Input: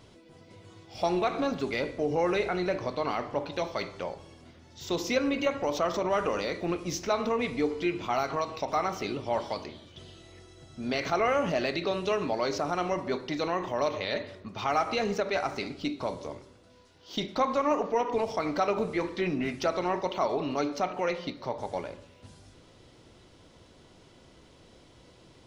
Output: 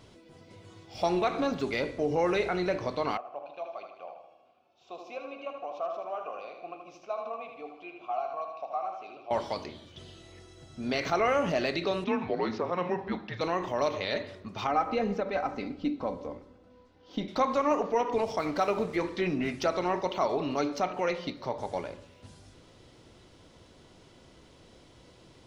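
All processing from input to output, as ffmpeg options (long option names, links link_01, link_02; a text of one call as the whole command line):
ffmpeg -i in.wav -filter_complex "[0:a]asettb=1/sr,asplit=3[link_01][link_02][link_03];[link_01]atrim=end=3.174[link_04];[link_02]atrim=start=3.17:end=9.31,asetpts=PTS-STARTPTS,afade=type=in:duration=0.004:curve=qsin,afade=type=out:start_time=6.136:duration=0.004:curve=qsin,asplit=3[link_05][link_06][link_07];[link_05]bandpass=frequency=730:width_type=q:width=8,volume=0dB[link_08];[link_06]bandpass=frequency=1090:width_type=q:width=8,volume=-6dB[link_09];[link_07]bandpass=frequency=2440:width_type=q:width=8,volume=-9dB[link_10];[link_08][link_09][link_10]amix=inputs=3:normalize=0,aecho=1:1:78|156|234|312|390|468:0.473|0.246|0.128|0.0665|0.0346|0.018,atrim=end_sample=270774[link_11];[link_03]atrim=start=9.306[link_12];[link_04][link_11]acrossfade=duration=0.004:curve1=hsin:curve2=qsin[link_13];[link_13][link_12]acrossfade=duration=0.004:curve1=qsin:curve2=hsin,asettb=1/sr,asplit=3[link_14][link_15][link_16];[link_14]atrim=end=12.044[link_17];[link_15]atrim=start=12.04:end=13.41,asetpts=PTS-STARTPTS,afade=type=in:duration=0.004:curve=qsin,afade=type=out:start_time=1.366:duration=0.004:curve=qsin,afreqshift=-180,highpass=190,lowpass=2700[link_18];[link_16]atrim=start=13.406[link_19];[link_17][link_18]acrossfade=duration=0.004:curve1=hsin:curve2=qsin[link_20];[link_20][link_19]acrossfade=duration=0.004:curve1=qsin:curve2=hsin,asettb=1/sr,asplit=3[link_21][link_22][link_23];[link_21]atrim=end=14.674[link_24];[link_22]atrim=start=14.67:end=17.28,asetpts=PTS-STARTPTS,afade=type=in:duration=0.004:curve=qsin,afade=type=out:start_time=2.606:duration=0.004:curve=qsin,lowpass=frequency=1100:poles=1,aecho=1:1:3.9:0.5,atrim=end_sample=115101[link_25];[link_23]atrim=start=17.276[link_26];[link_24][link_25]acrossfade=duration=0.004:curve1=hsin:curve2=qsin[link_27];[link_27][link_26]acrossfade=duration=0.004:curve1=qsin:curve2=hsin,asettb=1/sr,asplit=3[link_28][link_29][link_30];[link_28]atrim=end=18.384[link_31];[link_29]atrim=start=18.38:end=18.96,asetpts=PTS-STARTPTS,afade=type=in:duration=0.004:curve=qsin,afade=type=out:start_time=0.576:duration=0.004:curve=qsin,lowpass=9300,aeval=exprs='sgn(val(0))*max(abs(val(0))-0.00376,0)':channel_layout=same[link_32];[link_30]atrim=start=18.956[link_33];[link_31][link_32]acrossfade=duration=0.004:curve1=hsin:curve2=qsin[link_34];[link_34][link_33]acrossfade=duration=0.004:curve1=qsin:curve2=hsin" out.wav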